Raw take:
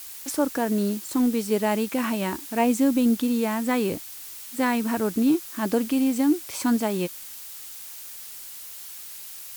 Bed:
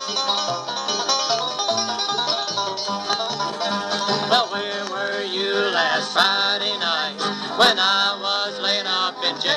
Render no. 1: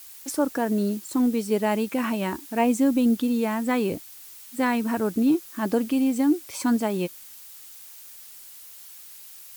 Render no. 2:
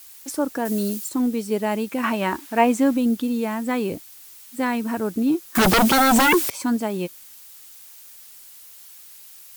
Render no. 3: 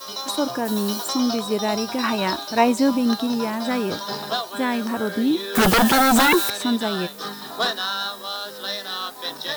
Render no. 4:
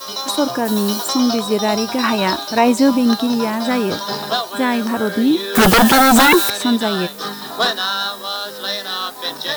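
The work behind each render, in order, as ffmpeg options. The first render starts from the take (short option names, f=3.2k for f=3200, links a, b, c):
-af "afftdn=nr=6:nf=-40"
-filter_complex "[0:a]asettb=1/sr,asplit=3[a][b][c];[a]atrim=end=0.654[d];[b]atrim=start=0.65:end=1.09,asetpts=PTS-STARTPTS,afade=t=in:d=0.004:c=qsin,afade=t=out:st=0.436:d=0.004:c=qsin,highshelf=f=3.5k:g=11[e];[c]atrim=start=1.086[f];[d][e]acrossfade=d=0.004:c1=hsin:c2=qsin[g];[g][f]acrossfade=d=0.004:c1=qsin:c2=hsin,asettb=1/sr,asplit=3[h][i][j];[h]atrim=end=2.034[k];[i]atrim=start=2.03:end=2.97,asetpts=PTS-STARTPTS,afade=t=in:d=0.004:c=qsin,afade=t=out:st=0.936:d=0.004:c=qsin,equalizer=f=1.3k:w=0.43:g=8[l];[j]atrim=start=2.966[m];[k][l]acrossfade=d=0.004:c1=hsin:c2=qsin[n];[n][m]acrossfade=d=0.004:c1=qsin:c2=hsin,asettb=1/sr,asplit=3[o][p][q];[o]atrim=end=5.554[r];[p]atrim=start=5.55:end=6.5,asetpts=PTS-STARTPTS,afade=t=in:d=0.004:c=qsin,afade=t=out:st=0.946:d=0.004:c=qsin,aeval=exprs='0.237*sin(PI/2*6.31*val(0)/0.237)':c=same[s];[q]atrim=start=6.496[t];[r][s]acrossfade=d=0.004:c1=hsin:c2=qsin[u];[u][t]acrossfade=d=0.004:c1=qsin:c2=hsin"
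-filter_complex "[1:a]volume=-8dB[a];[0:a][a]amix=inputs=2:normalize=0"
-af "volume=5.5dB,alimiter=limit=-1dB:level=0:latency=1"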